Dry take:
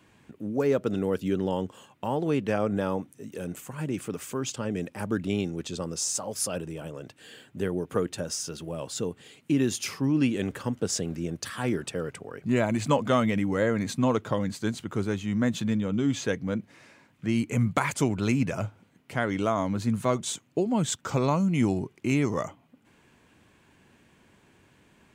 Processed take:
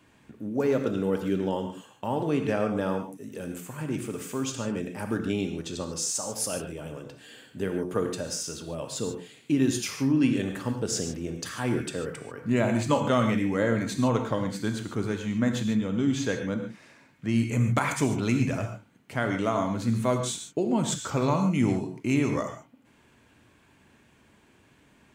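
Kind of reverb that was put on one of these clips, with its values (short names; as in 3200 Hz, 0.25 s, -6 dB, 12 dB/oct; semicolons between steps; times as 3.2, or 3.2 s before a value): non-linear reverb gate 0.17 s flat, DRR 4.5 dB; gain -1 dB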